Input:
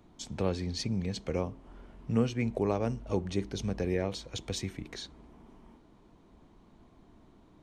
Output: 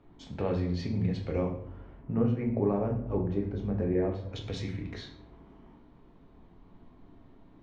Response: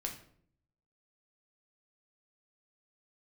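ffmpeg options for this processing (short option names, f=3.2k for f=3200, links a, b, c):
-filter_complex "[0:a]asetnsamples=n=441:p=0,asendcmd='1.99 lowpass f 1300;4.33 lowpass f 3400',lowpass=2.7k[a];[1:a]atrim=start_sample=2205,asetrate=37044,aresample=44100[b];[a][b]afir=irnorm=-1:irlink=0"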